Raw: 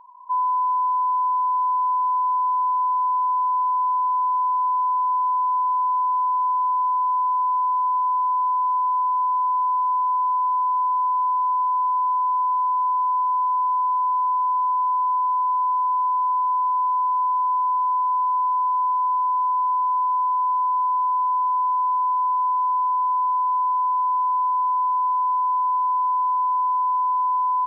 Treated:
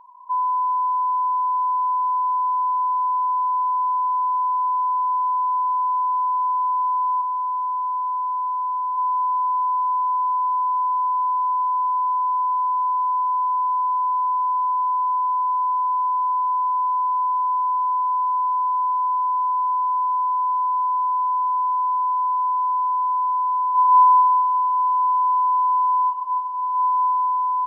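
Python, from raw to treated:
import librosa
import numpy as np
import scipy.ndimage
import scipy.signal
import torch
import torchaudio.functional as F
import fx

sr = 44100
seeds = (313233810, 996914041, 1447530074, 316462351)

y = fx.lowpass(x, sr, hz=1000.0, slope=12, at=(7.21, 8.96), fade=0.02)
y = fx.reverb_throw(y, sr, start_s=23.69, length_s=2.35, rt60_s=2.6, drr_db=-6.5)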